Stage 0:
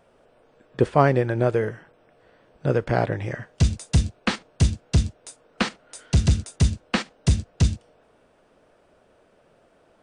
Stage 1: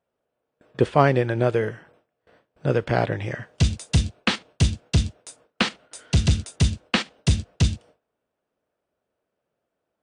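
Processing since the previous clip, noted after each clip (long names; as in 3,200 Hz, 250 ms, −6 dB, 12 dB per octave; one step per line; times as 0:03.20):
high-pass filter 50 Hz 12 dB per octave
dynamic equaliser 3,200 Hz, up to +6 dB, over −47 dBFS, Q 1.3
noise gate with hold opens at −46 dBFS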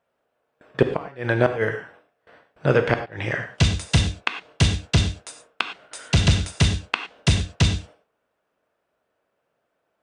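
parametric band 1,500 Hz +8.5 dB 2.9 octaves
gate with flip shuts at −4 dBFS, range −29 dB
reverb whose tail is shaped and stops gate 130 ms flat, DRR 7 dB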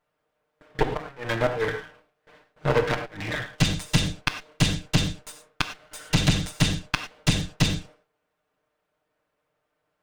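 lower of the sound and its delayed copy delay 6.6 ms
level −1 dB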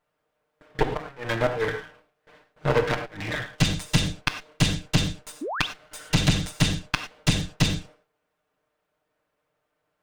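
sound drawn into the spectrogram rise, 0:05.41–0:05.67, 250–4,000 Hz −30 dBFS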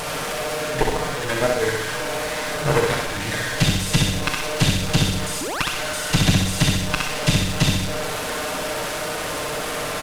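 linear delta modulator 64 kbit/s, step −24.5 dBFS
background noise pink −47 dBFS
on a send: repeating echo 64 ms, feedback 51%, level −3.5 dB
on the sum: level +2 dB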